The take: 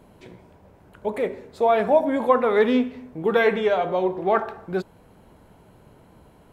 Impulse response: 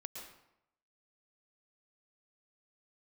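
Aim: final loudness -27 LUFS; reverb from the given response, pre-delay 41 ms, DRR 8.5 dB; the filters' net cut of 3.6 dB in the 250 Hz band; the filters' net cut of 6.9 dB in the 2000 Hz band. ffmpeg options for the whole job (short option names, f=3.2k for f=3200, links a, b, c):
-filter_complex "[0:a]equalizer=f=250:t=o:g=-4,equalizer=f=2k:t=o:g=-9,asplit=2[a][b];[1:a]atrim=start_sample=2205,adelay=41[c];[b][c]afir=irnorm=-1:irlink=0,volume=-5.5dB[d];[a][d]amix=inputs=2:normalize=0,volume=-3.5dB"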